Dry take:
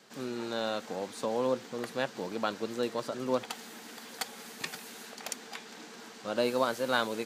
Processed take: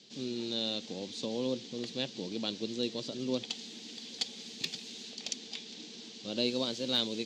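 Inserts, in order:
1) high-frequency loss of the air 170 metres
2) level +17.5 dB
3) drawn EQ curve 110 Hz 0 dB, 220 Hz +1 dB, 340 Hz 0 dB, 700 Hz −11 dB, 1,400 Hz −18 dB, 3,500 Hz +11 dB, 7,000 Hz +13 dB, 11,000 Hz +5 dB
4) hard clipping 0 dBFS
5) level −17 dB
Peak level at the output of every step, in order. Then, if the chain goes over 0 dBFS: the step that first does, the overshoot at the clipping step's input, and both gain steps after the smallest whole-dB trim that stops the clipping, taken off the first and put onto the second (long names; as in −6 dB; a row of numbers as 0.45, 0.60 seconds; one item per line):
−13.5, +4.0, +3.5, 0.0, −17.0 dBFS
step 2, 3.5 dB
step 2 +13.5 dB, step 5 −13 dB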